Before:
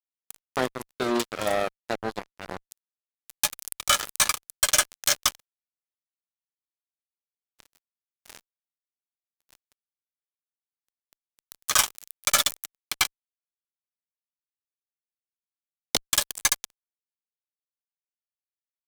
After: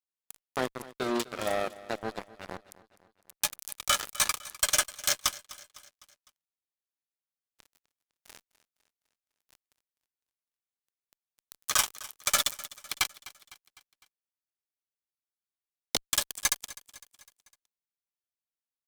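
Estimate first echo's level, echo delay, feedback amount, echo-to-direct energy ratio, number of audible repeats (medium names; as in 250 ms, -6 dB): -18.5 dB, 253 ms, 52%, -17.0 dB, 3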